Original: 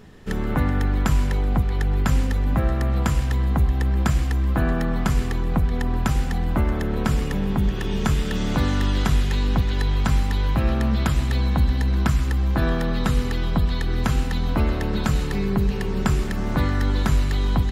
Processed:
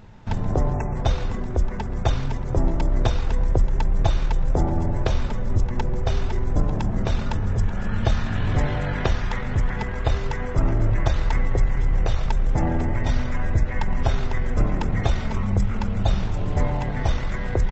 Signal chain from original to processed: hum notches 50/100/150/200/250/300/350/400/450 Hz; pitch shift -12 st; spectral selection erased 0.74–0.96 s, 2.7–5.4 kHz; trim +2.5 dB

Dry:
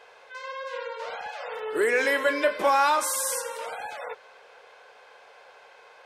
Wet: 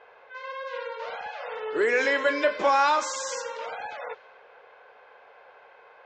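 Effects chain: level-controlled noise filter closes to 2 kHz, open at -23 dBFS; resampled via 16 kHz

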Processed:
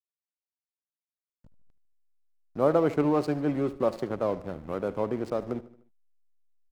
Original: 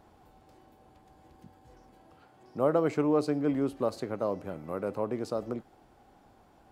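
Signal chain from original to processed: 3.03–4.12 s: comb 5.5 ms, depth 37%; hysteresis with a dead band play -38.5 dBFS; on a send: feedback delay 75 ms, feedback 50%, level -17 dB; on the sum: trim +3 dB

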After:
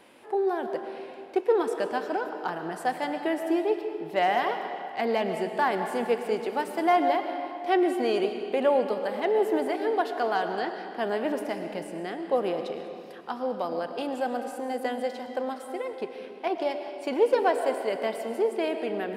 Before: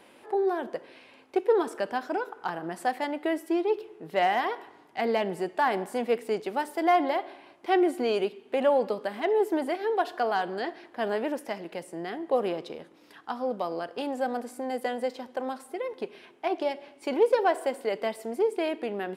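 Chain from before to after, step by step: 11.25–11.90 s: bass shelf 140 Hz +10 dB; reverberation RT60 2.5 s, pre-delay 75 ms, DRR 6.5 dB

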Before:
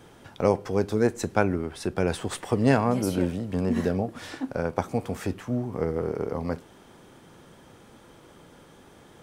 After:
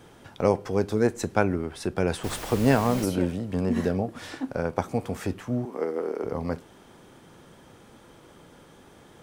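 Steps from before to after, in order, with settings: 2.23–3.04 s: added noise pink -37 dBFS; 5.65–6.24 s: high-pass 260 Hz 24 dB/octave

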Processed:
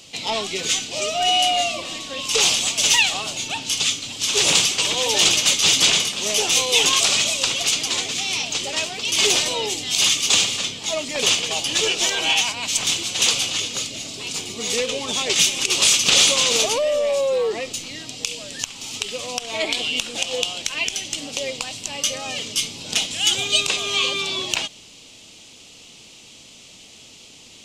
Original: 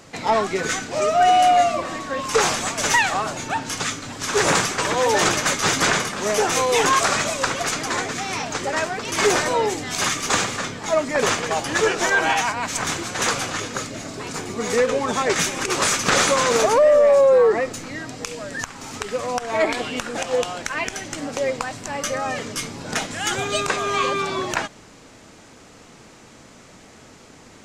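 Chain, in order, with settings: resonant high shelf 2.2 kHz +10.5 dB, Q 3; trim -6 dB

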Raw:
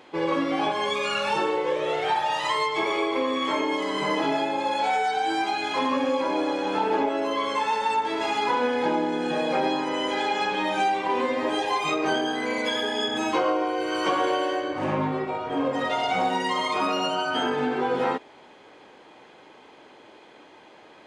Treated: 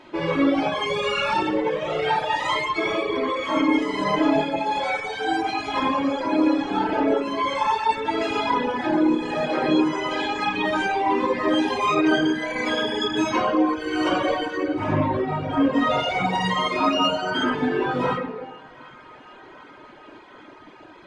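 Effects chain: bass shelf 89 Hz +10.5 dB; simulated room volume 1300 m³, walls mixed, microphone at 2.8 m; reverb removal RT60 1.4 s; treble shelf 7.2 kHz -8 dB; on a send: band-passed feedback delay 751 ms, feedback 79%, band-pass 1.4 kHz, level -21 dB

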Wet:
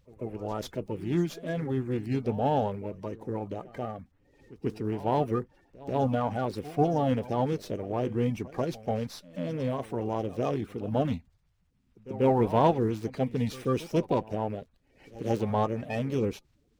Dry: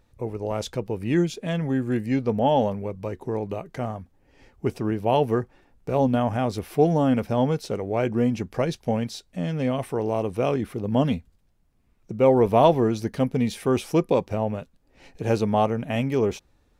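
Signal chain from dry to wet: coarse spectral quantiser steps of 30 dB; pre-echo 139 ms -18.5 dB; sliding maximum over 3 samples; trim -5 dB

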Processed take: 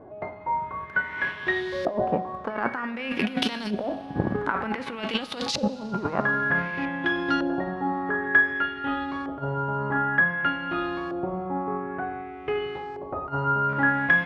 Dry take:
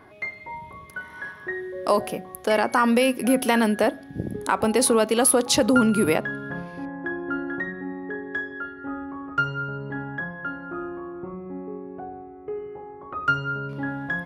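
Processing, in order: formants flattened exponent 0.6; compressor with a negative ratio -25 dBFS, ratio -0.5; LFO low-pass saw up 0.54 Hz 560–5000 Hz; Schroeder reverb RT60 3 s, combs from 30 ms, DRR 17 dB

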